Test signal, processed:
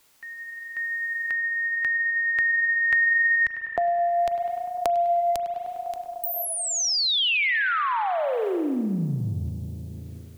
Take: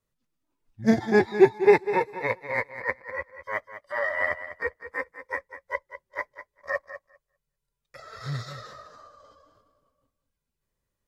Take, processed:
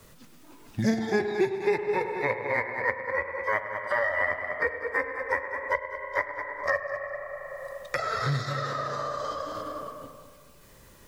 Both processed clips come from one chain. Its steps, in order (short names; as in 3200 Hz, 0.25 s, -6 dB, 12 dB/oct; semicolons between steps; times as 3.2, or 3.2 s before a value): tape echo 0.101 s, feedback 73%, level -11.5 dB, low-pass 2000 Hz; spring tank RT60 1.5 s, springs 36 ms, chirp 75 ms, DRR 10 dB; three-band squash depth 100%